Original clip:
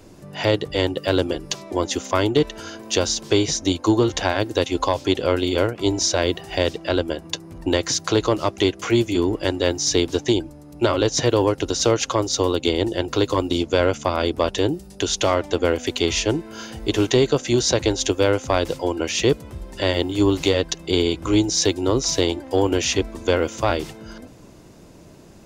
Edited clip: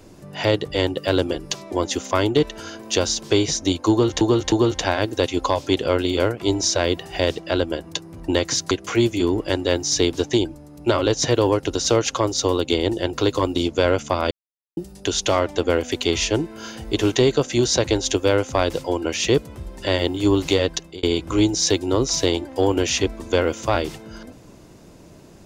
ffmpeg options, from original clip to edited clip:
-filter_complex "[0:a]asplit=7[a][b][c][d][e][f][g];[a]atrim=end=4.212[h];[b]atrim=start=3.898:end=4.212[i];[c]atrim=start=3.898:end=8.092[j];[d]atrim=start=8.658:end=14.26,asetpts=PTS-STARTPTS,afade=t=out:st=5.598:d=0.004:c=hsin[k];[e]atrim=start=14.26:end=14.72,asetpts=PTS-STARTPTS,volume=0[l];[f]atrim=start=14.72:end=20.98,asetpts=PTS-STARTPTS,afade=t=in:d=0.004:c=hsin,afade=t=out:st=5.98:d=0.28[m];[g]atrim=start=20.98,asetpts=PTS-STARTPTS,afade=t=in:d=0.004:c=hsin[n];[h][i]acrossfade=d=0.004:c1=hsin:c2=hsin[o];[o][j]acrossfade=d=0.004:c1=hsin:c2=hsin[p];[k][l][m][n]concat=n=4:v=0:a=1[q];[p][q]acrossfade=d=0.004:c1=hsin:c2=hsin"

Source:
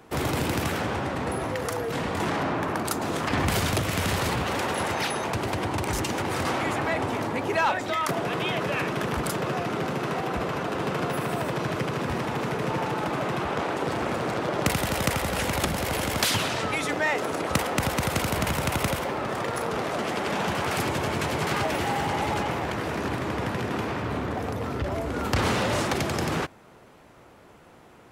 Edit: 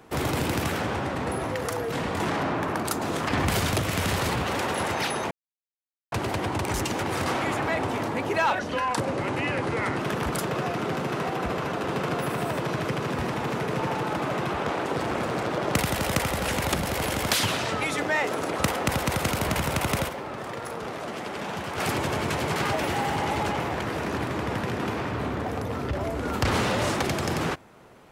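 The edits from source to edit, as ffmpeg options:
-filter_complex "[0:a]asplit=6[a][b][c][d][e][f];[a]atrim=end=5.31,asetpts=PTS-STARTPTS,afade=t=out:st=5.306:d=0.004:c=hsin,apad=pad_dur=0.81[g];[b]atrim=start=5.31:end=7.784,asetpts=PTS-STARTPTS,afade=t=in:d=0.004:c=hsin[h];[c]atrim=start=7.78:end=8.9,asetpts=PTS-STARTPTS,asetrate=35280,aresample=44100[i];[d]atrim=start=8.896:end=19.002[j];[e]atrim=start=18.998:end=20.692,asetpts=PTS-STARTPTS,volume=-5.5dB[k];[f]atrim=start=20.688[l];[g][h]concat=n=2:v=0:a=1[m];[m][i]acrossfade=d=0.004:c1=hsin:c2=hsin[n];[n][j]acrossfade=d=0.004:c1=hsin:c2=hsin[o];[o][k]acrossfade=d=0.004:c1=hsin:c2=hsin[p];[p][l]acrossfade=d=0.004:c1=hsin:c2=hsin"

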